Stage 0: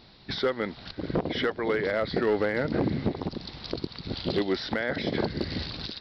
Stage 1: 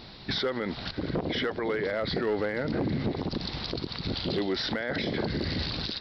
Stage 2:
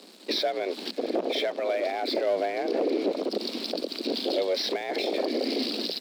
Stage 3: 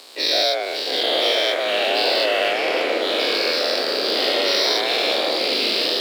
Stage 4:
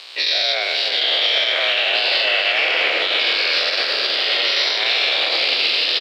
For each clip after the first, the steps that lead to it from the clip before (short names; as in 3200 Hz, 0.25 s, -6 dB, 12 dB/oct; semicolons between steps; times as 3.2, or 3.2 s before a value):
limiter -29 dBFS, peak gain reduction 11 dB; gain +7.5 dB
band shelf 1100 Hz -9 dB; crossover distortion -48 dBFS; frequency shift +180 Hz; gain +3.5 dB
spectral dilation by 0.24 s; echoes that change speed 0.701 s, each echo -3 st, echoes 3; HPF 690 Hz 12 dB/oct; gain +3.5 dB
EQ curve 120 Hz 0 dB, 230 Hz -10 dB, 2800 Hz +12 dB, 4800 Hz +5 dB, 11000 Hz -10 dB; limiter -8 dBFS, peak gain reduction 9 dB; echo 0.298 s -8.5 dB; gain -1 dB